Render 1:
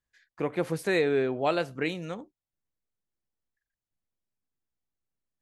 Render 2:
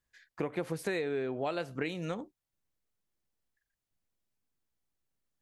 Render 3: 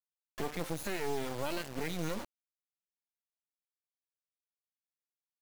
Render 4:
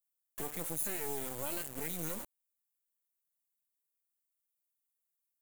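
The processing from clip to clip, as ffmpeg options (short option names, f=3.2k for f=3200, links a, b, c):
-af "acompressor=threshold=-34dB:ratio=6,volume=3dB"
-af "afftfilt=real='re*pow(10,22/40*sin(2*PI*(1.4*log(max(b,1)*sr/1024/100)/log(2)-(1.5)*(pts-256)/sr)))':imag='im*pow(10,22/40*sin(2*PI*(1.4*log(max(b,1)*sr/1024/100)/log(2)-(1.5)*(pts-256)/sr)))':win_size=1024:overlap=0.75,alimiter=limit=-24dB:level=0:latency=1:release=51,acrusher=bits=4:dc=4:mix=0:aa=0.000001"
-af "aexciter=amount=5.4:drive=5.6:freq=7.1k,volume=-5.5dB"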